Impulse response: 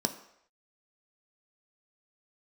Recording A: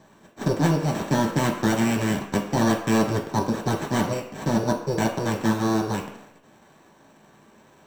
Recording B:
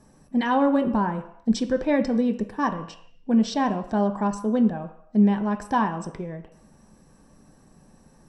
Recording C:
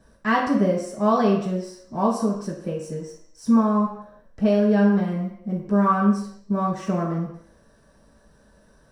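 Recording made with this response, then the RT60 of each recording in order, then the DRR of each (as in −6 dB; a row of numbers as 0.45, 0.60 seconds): B; non-exponential decay, non-exponential decay, non-exponential decay; −0.5, 6.0, −8.0 decibels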